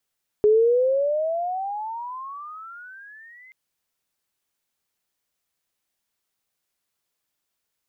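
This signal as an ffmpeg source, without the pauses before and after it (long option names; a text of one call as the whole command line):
ffmpeg -f lavfi -i "aevalsrc='pow(10,(-12.5-33*t/3.08)/20)*sin(2*PI*416*3.08/(28*log(2)/12)*(exp(28*log(2)/12*t/3.08)-1))':duration=3.08:sample_rate=44100" out.wav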